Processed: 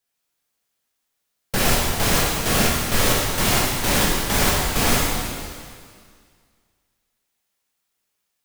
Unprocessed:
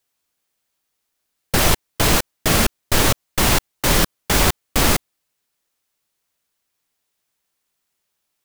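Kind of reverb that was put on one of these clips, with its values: plate-style reverb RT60 2 s, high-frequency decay 1×, DRR -4.5 dB; gain -6.5 dB

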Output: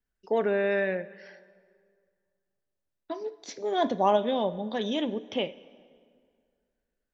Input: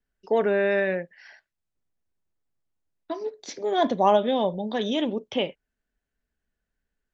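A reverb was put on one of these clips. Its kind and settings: plate-style reverb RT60 2.1 s, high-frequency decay 0.75×, DRR 16.5 dB; gain -3.5 dB

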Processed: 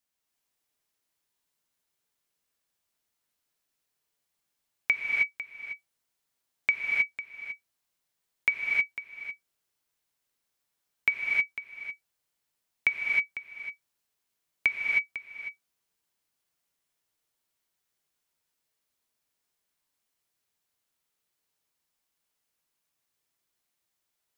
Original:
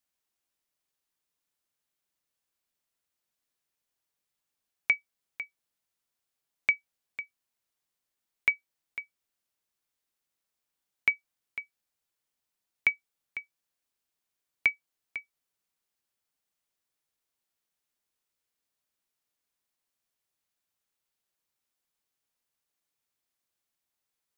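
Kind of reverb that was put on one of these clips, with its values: non-linear reverb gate 0.34 s rising, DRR -1.5 dB

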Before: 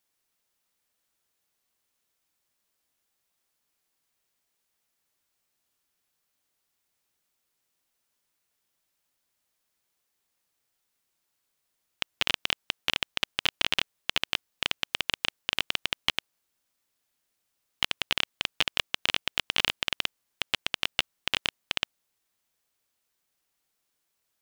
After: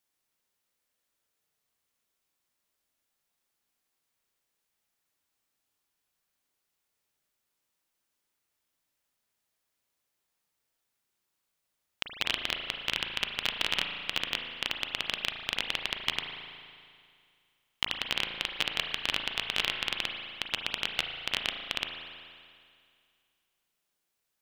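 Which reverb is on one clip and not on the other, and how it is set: spring tank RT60 2.2 s, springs 36 ms, chirp 25 ms, DRR 3.5 dB; gain -3.5 dB

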